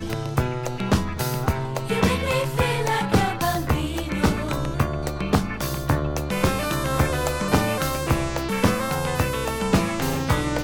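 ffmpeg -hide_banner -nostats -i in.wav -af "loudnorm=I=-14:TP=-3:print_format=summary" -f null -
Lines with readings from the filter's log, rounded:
Input Integrated:    -23.7 LUFS
Input True Peak:      -4.2 dBTP
Input LRA:             0.9 LU
Input Threshold:     -33.7 LUFS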